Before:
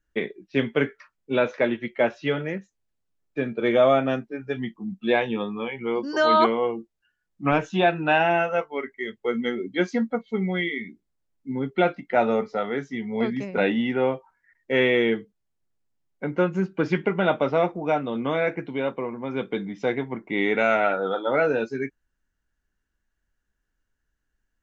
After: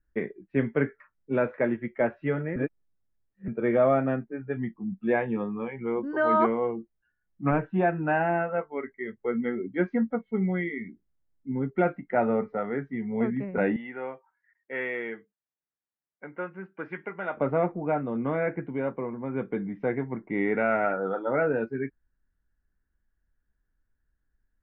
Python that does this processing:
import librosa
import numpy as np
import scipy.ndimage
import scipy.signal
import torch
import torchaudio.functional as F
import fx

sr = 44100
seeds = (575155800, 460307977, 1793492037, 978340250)

y = fx.air_absorb(x, sr, metres=180.0, at=(7.5, 8.71))
y = fx.highpass(y, sr, hz=1400.0, slope=6, at=(13.76, 17.37))
y = fx.edit(y, sr, fx.reverse_span(start_s=2.56, length_s=0.92), tone=tone)
y = scipy.signal.sosfilt(scipy.signal.cheby1(3, 1.0, 1900.0, 'lowpass', fs=sr, output='sos'), y)
y = fx.low_shelf(y, sr, hz=200.0, db=7.5)
y = y * 10.0 ** (-4.0 / 20.0)